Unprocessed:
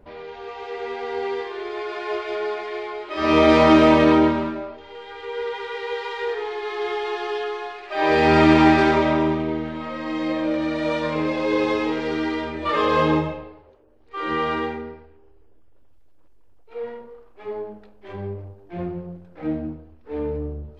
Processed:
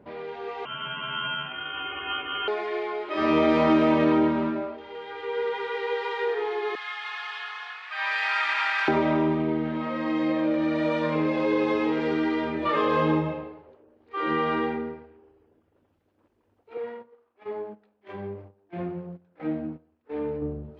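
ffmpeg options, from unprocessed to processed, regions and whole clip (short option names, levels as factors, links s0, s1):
-filter_complex "[0:a]asettb=1/sr,asplit=3[s0][s1][s2];[s0]atrim=end=0.654[s3];[s1]atrim=start=0.65:end=2.48,asetpts=PTS-STARTPTS,afade=t=in:d=0.004:c=qsin,afade=t=out:st=1.826:d=0.004:c=qsin,lowpass=f=2300:t=q:w=0.5098,lowpass=f=2300:t=q:w=0.6013,lowpass=f=2300:t=q:w=0.9,lowpass=f=2300:t=q:w=2.563,afreqshift=-2700,aeval=exprs='val(0)*sin(2*PI*870*n/s)':c=same[s4];[s2]atrim=start=2.476[s5];[s3][s4]acrossfade=d=0.004:c1=hsin:c2=qsin[s6];[s6][s5]acrossfade=d=0.004:c1=qsin:c2=hsin,asettb=1/sr,asplit=3[s7][s8][s9];[s7]atrim=end=6.754[s10];[s8]atrim=start=6.75:end=8.88,asetpts=PTS-STARTPTS,afade=t=in:d=0.004:c=qsin,afade=t=out:st=2.126:d=0.004:c=qsin,highpass=f=1200:w=0.5412,highpass=f=1200:w=1.3066,asplit=6[s11][s12][s13][s14][s15][s16];[s12]adelay=263,afreqshift=41,volume=0.422[s17];[s13]adelay=526,afreqshift=82,volume=0.195[s18];[s14]adelay=789,afreqshift=123,volume=0.0891[s19];[s15]adelay=1052,afreqshift=164,volume=0.0412[s20];[s16]adelay=1315,afreqshift=205,volume=0.0188[s21];[s11][s17][s18][s19][s20][s21]amix=inputs=6:normalize=0,atrim=end_sample=93933[s22];[s9]atrim=start=8.876[s23];[s10][s22]acrossfade=d=0.004:c1=hsin:c2=qsin[s24];[s24][s23]acrossfade=d=0.004:c1=qsin:c2=hsin,asettb=1/sr,asplit=3[s25][s26][s27];[s25]atrim=end=16.774[s28];[s26]atrim=start=16.77:end=20.42,asetpts=PTS-STARTPTS,afade=t=in:d=0.004:c=qsin,afade=t=out:st=3.646:d=0.004:c=qsin,lowshelf=f=500:g=-7,agate=range=0.251:threshold=0.00631:ratio=16:release=100:detection=peak[s29];[s27]atrim=start=20.416[s30];[s28][s29]acrossfade=d=0.004:c1=hsin:c2=qsin[s31];[s31][s30]acrossfade=d=0.004:c1=qsin:c2=hsin,highpass=180,bass=f=250:g=8,treble=f=4000:g=-9,acompressor=threshold=0.0708:ratio=2"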